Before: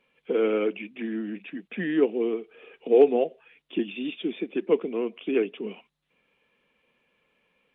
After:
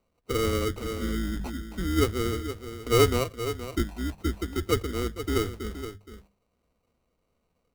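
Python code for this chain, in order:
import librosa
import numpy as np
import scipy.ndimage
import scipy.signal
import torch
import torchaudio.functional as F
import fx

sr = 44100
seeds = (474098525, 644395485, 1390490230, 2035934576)

p1 = fx.octave_divider(x, sr, octaves=2, level_db=-3.0)
p2 = fx.tilt_eq(p1, sr, slope=-3.0)
p3 = fx.sample_hold(p2, sr, seeds[0], rate_hz=1700.0, jitter_pct=0)
p4 = fx.hum_notches(p3, sr, base_hz=50, count=4)
p5 = p4 + fx.echo_single(p4, sr, ms=471, db=-11.0, dry=0)
p6 = fx.sustainer(p5, sr, db_per_s=24.0, at=(0.84, 1.53), fade=0.02)
y = p6 * 10.0 ** (-7.5 / 20.0)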